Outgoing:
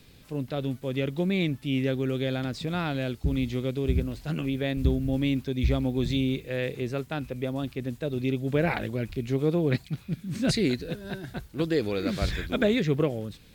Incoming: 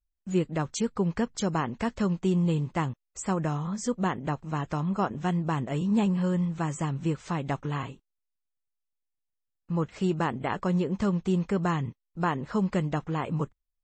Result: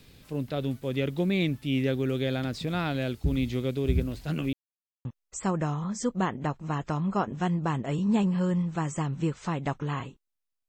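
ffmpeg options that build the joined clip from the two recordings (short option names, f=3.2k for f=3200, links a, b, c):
-filter_complex "[0:a]apad=whole_dur=10.68,atrim=end=10.68,asplit=2[a][b];[a]atrim=end=4.53,asetpts=PTS-STARTPTS,afade=t=out:st=4.526:d=0.004:c=hsin[c];[b]atrim=start=4.53:end=5.05,asetpts=PTS-STARTPTS,volume=0[d];[1:a]atrim=start=2.88:end=8.51,asetpts=PTS-STARTPTS,afade=t=in:d=0.004:c=hsin[e];[c][d][e]concat=n=3:v=0:a=1"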